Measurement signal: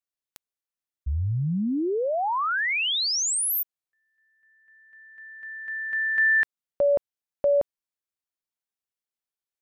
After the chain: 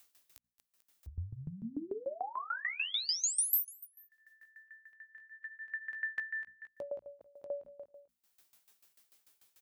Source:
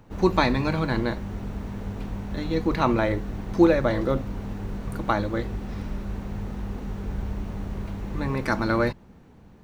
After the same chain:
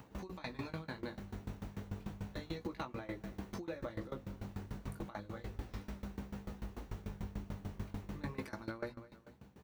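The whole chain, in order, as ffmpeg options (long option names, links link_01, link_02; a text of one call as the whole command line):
ffmpeg -i in.wav -af "highshelf=frequency=6000:gain=-10.5,bandreject=frequency=60:width_type=h:width=6,bandreject=frequency=120:width_type=h:width=6,bandreject=frequency=180:width_type=h:width=6,bandreject=frequency=240:width_type=h:width=6,flanger=delay=15.5:depth=6:speed=0.32,highpass=frequency=48:width=0.5412,highpass=frequency=48:width=1.3066,aecho=1:1:221|442:0.0841|0.0202,acompressor=threshold=-34dB:ratio=2.5:attack=77:release=104:knee=6:detection=rms,alimiter=level_in=1dB:limit=-24dB:level=0:latency=1:release=367,volume=-1dB,aemphasis=mode=production:type=75kf,acompressor=mode=upward:threshold=-43dB:ratio=4:attack=1.7:release=316:knee=2.83:detection=peak,aeval=exprs='val(0)*pow(10,-20*if(lt(mod(6.8*n/s,1),2*abs(6.8)/1000),1-mod(6.8*n/s,1)/(2*abs(6.8)/1000),(mod(6.8*n/s,1)-2*abs(6.8)/1000)/(1-2*abs(6.8)/1000))/20)':channel_layout=same,volume=-1.5dB" out.wav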